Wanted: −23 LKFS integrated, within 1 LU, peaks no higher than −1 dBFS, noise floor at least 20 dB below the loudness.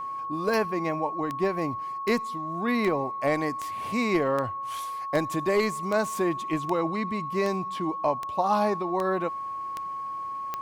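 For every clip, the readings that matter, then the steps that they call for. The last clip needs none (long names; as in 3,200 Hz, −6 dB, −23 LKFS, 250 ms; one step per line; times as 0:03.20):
number of clicks 14; interfering tone 1,100 Hz; level of the tone −31 dBFS; integrated loudness −28.0 LKFS; sample peak −11.5 dBFS; target loudness −23.0 LKFS
→ click removal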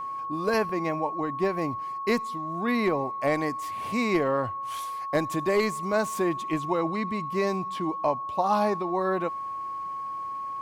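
number of clicks 0; interfering tone 1,100 Hz; level of the tone −31 dBFS
→ notch filter 1,100 Hz, Q 30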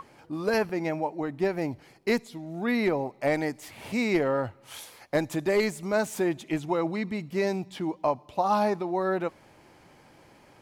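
interfering tone none found; integrated loudness −28.5 LKFS; sample peak −14.0 dBFS; target loudness −23.0 LKFS
→ level +5.5 dB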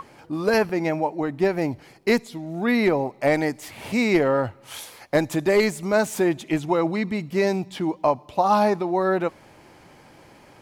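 integrated loudness −23.0 LKFS; sample peak −8.5 dBFS; background noise floor −51 dBFS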